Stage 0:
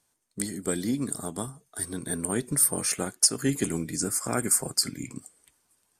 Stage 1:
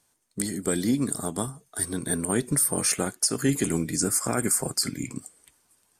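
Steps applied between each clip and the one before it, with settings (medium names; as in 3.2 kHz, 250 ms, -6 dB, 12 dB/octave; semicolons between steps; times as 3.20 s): peak limiter -16.5 dBFS, peak gain reduction 8.5 dB; trim +4 dB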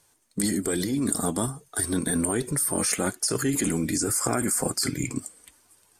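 in parallel at +2 dB: compressor with a negative ratio -29 dBFS, ratio -0.5; on the sum: flange 1.2 Hz, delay 1.9 ms, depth 2.3 ms, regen -42%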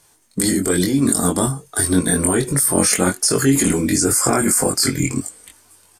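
doubling 22 ms -3 dB; trim +7 dB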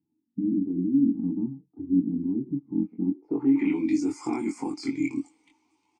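low-pass sweep 210 Hz -> 6.3 kHz, 3.06–3.93 s; vowel filter u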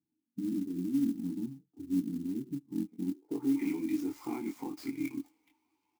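sampling jitter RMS 0.029 ms; trim -8 dB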